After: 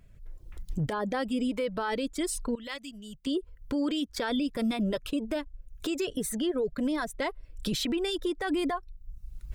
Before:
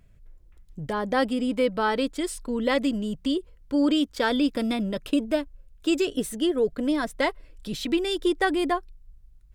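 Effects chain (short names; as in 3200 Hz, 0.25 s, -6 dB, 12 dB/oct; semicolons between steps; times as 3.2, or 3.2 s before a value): recorder AGC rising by 22 dB/s; reverb removal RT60 0.78 s; 2.55–3.27 passive tone stack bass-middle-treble 5-5-5; limiter -22 dBFS, peak gain reduction 11.5 dB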